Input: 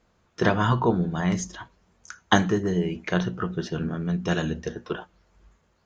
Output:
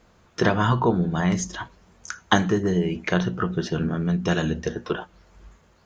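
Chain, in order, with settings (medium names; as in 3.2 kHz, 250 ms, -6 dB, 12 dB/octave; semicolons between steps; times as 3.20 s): compression 1.5:1, threshold -38 dBFS, peak gain reduction 9 dB; trim +8.5 dB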